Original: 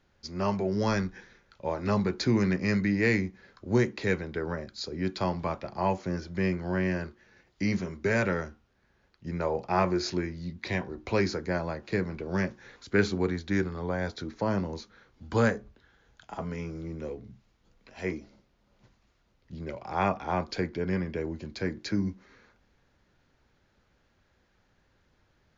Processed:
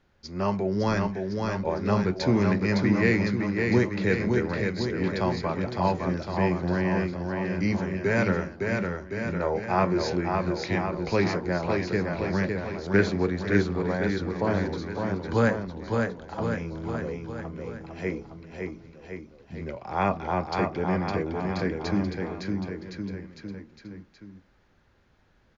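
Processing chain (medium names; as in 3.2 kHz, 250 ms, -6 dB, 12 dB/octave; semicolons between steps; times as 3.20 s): treble shelf 4.7 kHz -6.5 dB; bouncing-ball echo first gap 560 ms, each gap 0.9×, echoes 5; trim +2 dB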